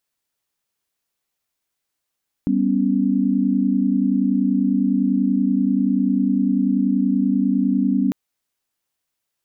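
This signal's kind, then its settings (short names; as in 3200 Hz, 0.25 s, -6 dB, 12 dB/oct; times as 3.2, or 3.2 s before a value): chord G3/B3/C#4 sine, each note -20 dBFS 5.65 s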